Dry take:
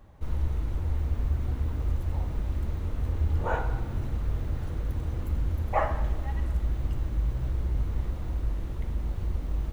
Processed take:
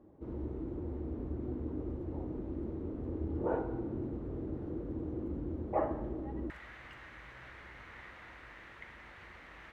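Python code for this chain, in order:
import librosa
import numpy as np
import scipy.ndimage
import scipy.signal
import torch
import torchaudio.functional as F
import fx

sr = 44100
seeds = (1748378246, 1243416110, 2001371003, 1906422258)

y = fx.bandpass_q(x, sr, hz=fx.steps((0.0, 330.0), (6.5, 1900.0)), q=2.9)
y = y * librosa.db_to_amplitude(8.0)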